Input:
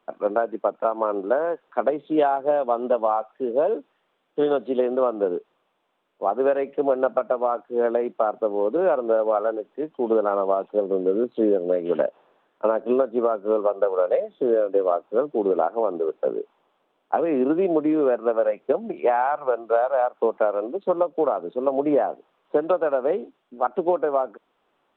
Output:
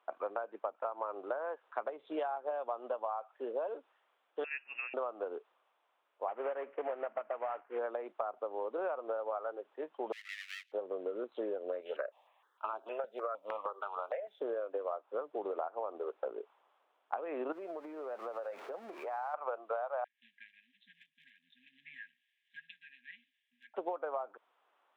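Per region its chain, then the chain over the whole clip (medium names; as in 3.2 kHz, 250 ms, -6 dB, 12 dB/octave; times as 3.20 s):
4.44–4.94 s: high-pass 1.1 kHz + frequency inversion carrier 3.1 kHz
6.28–7.79 s: CVSD coder 16 kbps + low-pass 1.8 kHz
10.12–10.72 s: comb filter that takes the minimum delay 9.7 ms + steep high-pass 2 kHz 48 dB/octave + upward compressor, threshold -59 dBFS
11.81–14.40 s: tilt EQ +3 dB/octave + stepped phaser 6.5 Hz 300–1900 Hz
17.52–19.34 s: jump at every zero crossing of -35 dBFS + treble shelf 3 kHz -9.5 dB + compression 5:1, threshold -30 dBFS
20.04–23.74 s: brick-wall FIR band-stop 250–1600 Hz + peaking EQ 210 Hz -14.5 dB 1 oct
whole clip: high-pass 800 Hz 12 dB/octave; treble shelf 2.6 kHz -10 dB; compression, threshold -34 dBFS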